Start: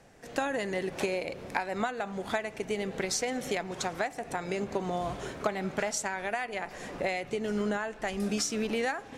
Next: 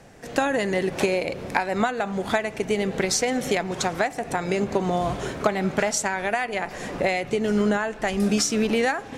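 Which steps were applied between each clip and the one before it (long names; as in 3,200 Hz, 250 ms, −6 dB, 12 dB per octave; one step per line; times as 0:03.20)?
parametric band 130 Hz +2.5 dB 2.5 octaves
level +7.5 dB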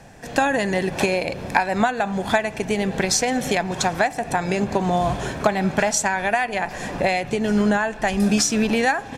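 comb filter 1.2 ms, depth 33%
level +3 dB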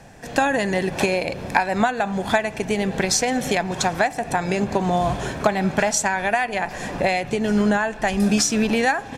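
no processing that can be heard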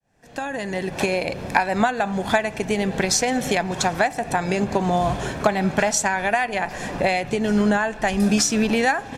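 fade in at the beginning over 1.28 s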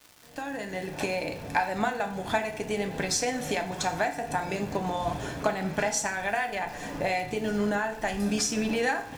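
surface crackle 360 per second −31 dBFS
feedback delay network reverb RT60 0.51 s, low-frequency decay 1.05×, high-frequency decay 0.9×, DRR 4.5 dB
level −8.5 dB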